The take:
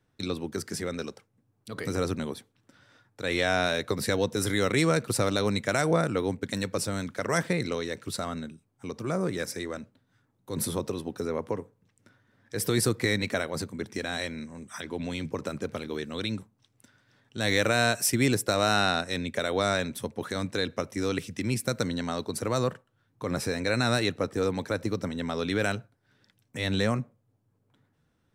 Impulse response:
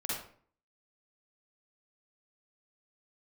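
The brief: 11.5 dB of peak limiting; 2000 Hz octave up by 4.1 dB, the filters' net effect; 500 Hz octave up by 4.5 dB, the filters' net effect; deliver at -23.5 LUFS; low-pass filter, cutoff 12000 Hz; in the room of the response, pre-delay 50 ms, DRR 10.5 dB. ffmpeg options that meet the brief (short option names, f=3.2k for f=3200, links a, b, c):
-filter_complex "[0:a]lowpass=12k,equalizer=f=500:t=o:g=5,equalizer=f=2k:t=o:g=5,alimiter=limit=-19dB:level=0:latency=1,asplit=2[a][b];[1:a]atrim=start_sample=2205,adelay=50[c];[b][c]afir=irnorm=-1:irlink=0,volume=-14.5dB[d];[a][d]amix=inputs=2:normalize=0,volume=7.5dB"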